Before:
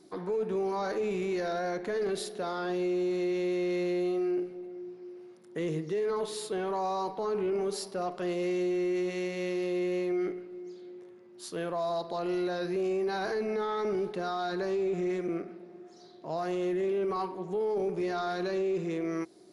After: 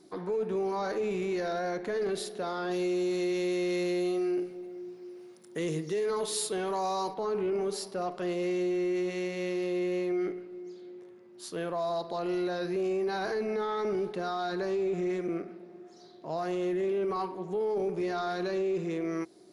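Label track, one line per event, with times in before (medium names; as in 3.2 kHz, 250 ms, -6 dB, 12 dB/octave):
2.710000	7.140000	treble shelf 4.2 kHz +11.5 dB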